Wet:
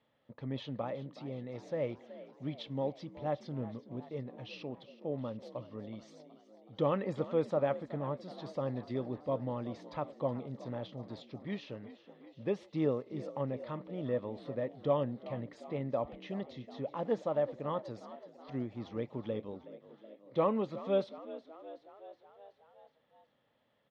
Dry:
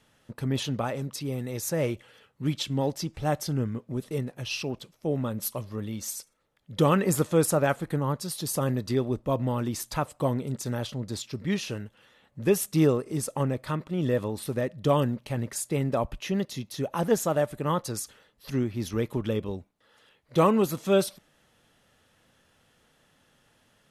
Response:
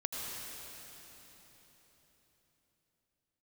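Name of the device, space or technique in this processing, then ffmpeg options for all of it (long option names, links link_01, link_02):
frequency-shifting delay pedal into a guitar cabinet: -filter_complex "[0:a]asplit=7[link_01][link_02][link_03][link_04][link_05][link_06][link_07];[link_02]adelay=372,afreqshift=52,volume=-16dB[link_08];[link_03]adelay=744,afreqshift=104,volume=-20dB[link_09];[link_04]adelay=1116,afreqshift=156,volume=-24dB[link_10];[link_05]adelay=1488,afreqshift=208,volume=-28dB[link_11];[link_06]adelay=1860,afreqshift=260,volume=-32.1dB[link_12];[link_07]adelay=2232,afreqshift=312,volume=-36.1dB[link_13];[link_01][link_08][link_09][link_10][link_11][link_12][link_13]amix=inputs=7:normalize=0,highpass=91,equalizer=frequency=92:width_type=q:width=4:gain=-9,equalizer=frequency=170:width_type=q:width=4:gain=-6,equalizer=frequency=380:width_type=q:width=4:gain=-4,equalizer=frequency=550:width_type=q:width=4:gain=5,equalizer=frequency=1500:width_type=q:width=4:gain=-9,equalizer=frequency=2700:width_type=q:width=4:gain=-7,lowpass=frequency=3500:width=0.5412,lowpass=frequency=3500:width=1.3066,volume=-8.5dB"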